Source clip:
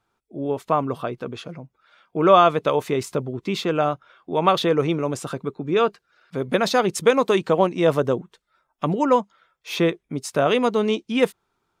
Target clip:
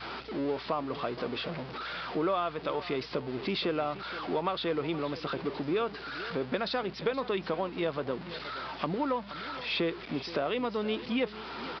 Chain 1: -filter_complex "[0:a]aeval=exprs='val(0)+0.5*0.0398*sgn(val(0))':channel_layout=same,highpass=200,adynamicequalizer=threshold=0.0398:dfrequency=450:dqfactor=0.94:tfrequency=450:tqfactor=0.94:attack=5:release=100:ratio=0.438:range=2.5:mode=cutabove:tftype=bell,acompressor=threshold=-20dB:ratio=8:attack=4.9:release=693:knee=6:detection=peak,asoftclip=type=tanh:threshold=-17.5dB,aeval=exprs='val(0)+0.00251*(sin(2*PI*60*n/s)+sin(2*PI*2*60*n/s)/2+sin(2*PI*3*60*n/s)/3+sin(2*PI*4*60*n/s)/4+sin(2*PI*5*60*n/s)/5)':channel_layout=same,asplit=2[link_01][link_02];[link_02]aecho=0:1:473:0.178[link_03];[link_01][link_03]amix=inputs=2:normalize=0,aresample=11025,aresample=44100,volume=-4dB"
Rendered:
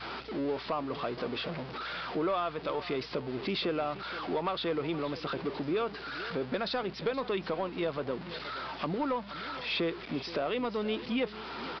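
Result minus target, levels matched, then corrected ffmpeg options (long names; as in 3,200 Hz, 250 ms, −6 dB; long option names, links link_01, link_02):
soft clipping: distortion +19 dB
-filter_complex "[0:a]aeval=exprs='val(0)+0.5*0.0398*sgn(val(0))':channel_layout=same,highpass=200,adynamicequalizer=threshold=0.0398:dfrequency=450:dqfactor=0.94:tfrequency=450:tqfactor=0.94:attack=5:release=100:ratio=0.438:range=2.5:mode=cutabove:tftype=bell,acompressor=threshold=-20dB:ratio=8:attack=4.9:release=693:knee=6:detection=peak,asoftclip=type=tanh:threshold=-6.5dB,aeval=exprs='val(0)+0.00251*(sin(2*PI*60*n/s)+sin(2*PI*2*60*n/s)/2+sin(2*PI*3*60*n/s)/3+sin(2*PI*4*60*n/s)/4+sin(2*PI*5*60*n/s)/5)':channel_layout=same,asplit=2[link_01][link_02];[link_02]aecho=0:1:473:0.178[link_03];[link_01][link_03]amix=inputs=2:normalize=0,aresample=11025,aresample=44100,volume=-4dB"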